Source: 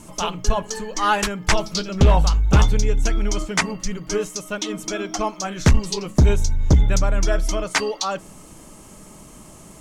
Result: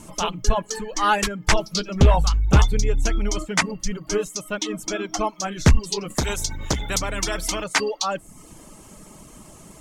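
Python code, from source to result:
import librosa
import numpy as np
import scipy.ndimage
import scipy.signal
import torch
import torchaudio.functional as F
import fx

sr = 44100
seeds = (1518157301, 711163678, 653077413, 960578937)

y = fx.dereverb_blind(x, sr, rt60_s=0.55)
y = fx.spectral_comp(y, sr, ratio=2.0, at=(6.1, 7.64))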